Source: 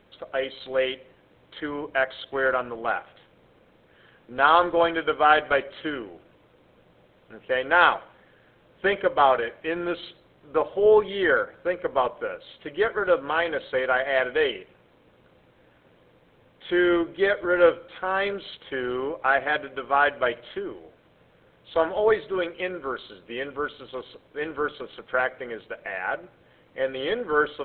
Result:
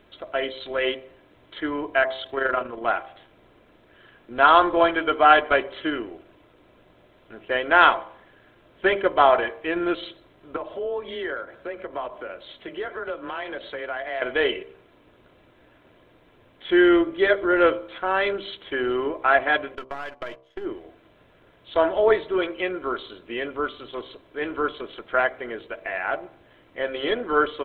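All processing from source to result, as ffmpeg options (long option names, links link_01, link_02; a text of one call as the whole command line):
ffmpeg -i in.wav -filter_complex "[0:a]asettb=1/sr,asplit=3[link_01][link_02][link_03];[link_01]atrim=end=2.264[link_04];[link_02]atrim=start=2.26:end=2.82,asetpts=PTS-STARTPTS,afade=type=in:duration=0.004:curve=qsin,afade=type=out:start_time=0.556:duration=0.004:curve=qsin,acompressor=mode=upward:threshold=-42dB:ratio=2.5:attack=3.2:release=140:knee=2.83:detection=peak,tremolo=f=25:d=0.571[link_05];[link_03]atrim=start=2.816[link_06];[link_04][link_05]acrossfade=duration=0.004:curve1=hsin:curve2=qsin[link_07];[link_07][link_06]acrossfade=duration=0.004:curve1=qsin:curve2=hsin,asettb=1/sr,asplit=3[link_08][link_09][link_10];[link_08]atrim=end=10.564[link_11];[link_09]atrim=start=10.56:end=14.22,asetpts=PTS-STARTPTS,afade=type=in:duration=0.004:curve=qsin,afade=type=out:start_time=3.656:duration=0.004:curve=qsin,acompressor=threshold=-34dB:ratio=2.5:attack=3.2:release=140:knee=1:detection=peak,afreqshift=19[link_12];[link_10]atrim=start=14.216[link_13];[link_11][link_12]acrossfade=duration=0.004:curve1=hsin:curve2=qsin[link_14];[link_14][link_13]acrossfade=duration=0.004:curve1=qsin:curve2=hsin,asettb=1/sr,asplit=3[link_15][link_16][link_17];[link_15]atrim=end=19.754[link_18];[link_16]atrim=start=19.75:end=20.65,asetpts=PTS-STARTPTS,afade=type=in:duration=0.004:curve=qsin,afade=type=out:start_time=0.896:duration=0.004:curve=qsin,aeval=exprs='if(lt(val(0),0),0.447*val(0),val(0))':channel_layout=same,agate=range=-21dB:threshold=-37dB:ratio=16:release=100:detection=peak,acompressor=threshold=-30dB:ratio=12:attack=3.2:release=140:knee=1:detection=peak[link_19];[link_17]atrim=start=20.646[link_20];[link_18][link_19]acrossfade=duration=0.004:curve1=hsin:curve2=qsin[link_21];[link_21][link_20]acrossfade=duration=0.004:curve1=qsin:curve2=hsin,aecho=1:1:3:0.39,bandreject=frequency=65.79:width_type=h:width=4,bandreject=frequency=131.58:width_type=h:width=4,bandreject=frequency=197.37:width_type=h:width=4,bandreject=frequency=263.16:width_type=h:width=4,bandreject=frequency=328.95:width_type=h:width=4,bandreject=frequency=394.74:width_type=h:width=4,bandreject=frequency=460.53:width_type=h:width=4,bandreject=frequency=526.32:width_type=h:width=4,bandreject=frequency=592.11:width_type=h:width=4,bandreject=frequency=657.9:width_type=h:width=4,bandreject=frequency=723.69:width_type=h:width=4,bandreject=frequency=789.48:width_type=h:width=4,bandreject=frequency=855.27:width_type=h:width=4,bandreject=frequency=921.06:width_type=h:width=4,bandreject=frequency=986.85:width_type=h:width=4,bandreject=frequency=1052.64:width_type=h:width=4,bandreject=frequency=1118.43:width_type=h:width=4,bandreject=frequency=1184.22:width_type=h:width=4,volume=2.5dB" out.wav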